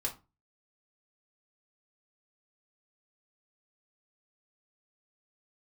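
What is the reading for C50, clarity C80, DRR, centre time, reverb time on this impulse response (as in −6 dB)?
13.5 dB, 20.0 dB, −0.5 dB, 13 ms, 0.30 s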